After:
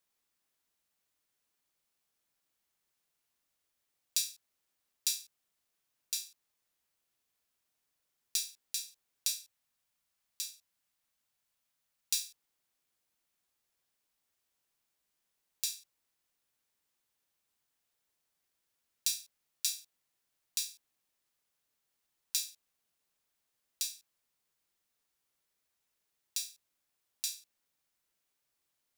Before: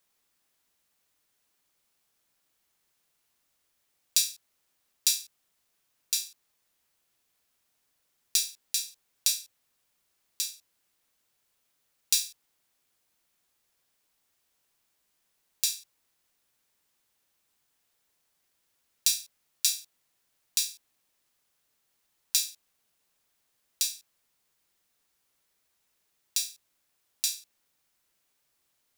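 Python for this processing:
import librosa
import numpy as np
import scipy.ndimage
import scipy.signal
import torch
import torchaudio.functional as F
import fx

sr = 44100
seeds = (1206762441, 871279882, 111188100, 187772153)

y = fx.peak_eq(x, sr, hz=390.0, db=-7.5, octaves=0.68, at=(9.28, 12.27))
y = F.gain(torch.from_numpy(y), -7.5).numpy()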